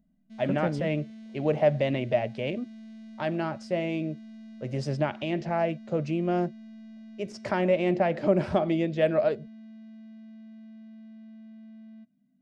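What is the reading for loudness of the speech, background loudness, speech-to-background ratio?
-28.0 LUFS, -46.5 LUFS, 18.5 dB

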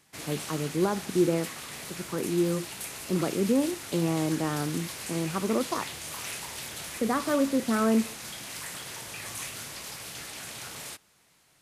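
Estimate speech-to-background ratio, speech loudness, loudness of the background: 8.0 dB, -29.0 LUFS, -37.0 LUFS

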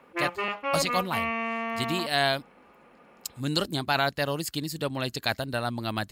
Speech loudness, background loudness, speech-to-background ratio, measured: -29.0 LUFS, -30.5 LUFS, 1.5 dB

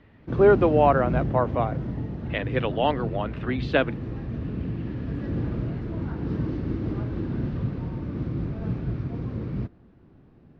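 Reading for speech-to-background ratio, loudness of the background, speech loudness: 6.5 dB, -30.5 LUFS, -24.0 LUFS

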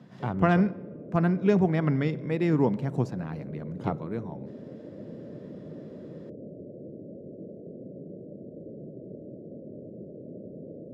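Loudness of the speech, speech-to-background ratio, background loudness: -27.0 LUFS, 16.5 dB, -43.5 LUFS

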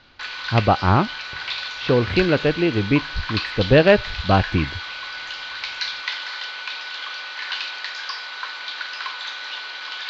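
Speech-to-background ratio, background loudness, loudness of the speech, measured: 9.0 dB, -28.5 LUFS, -19.5 LUFS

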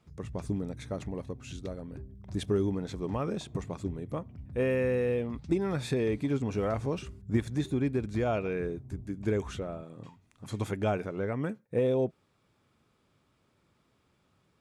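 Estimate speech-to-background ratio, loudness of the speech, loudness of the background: 15.0 dB, -32.5 LUFS, -47.5 LUFS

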